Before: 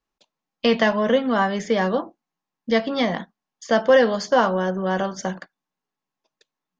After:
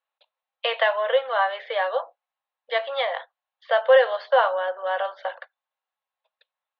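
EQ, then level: Chebyshev band-pass 510–4000 Hz, order 5; 0.0 dB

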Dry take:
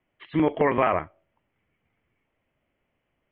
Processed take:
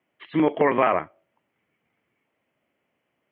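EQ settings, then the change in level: HPF 170 Hz 12 dB/oct; +2.0 dB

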